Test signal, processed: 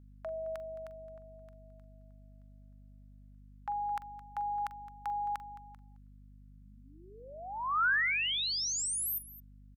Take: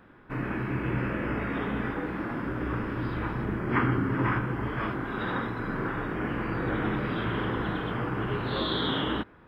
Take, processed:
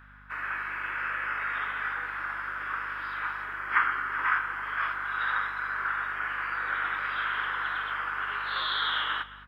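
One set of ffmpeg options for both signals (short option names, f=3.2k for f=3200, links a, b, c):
-af "highpass=f=1.4k:t=q:w=2.3,aecho=1:1:43|216:0.15|0.133,aeval=exprs='val(0)+0.002*(sin(2*PI*50*n/s)+sin(2*PI*2*50*n/s)/2+sin(2*PI*3*50*n/s)/3+sin(2*PI*4*50*n/s)/4+sin(2*PI*5*50*n/s)/5)':c=same"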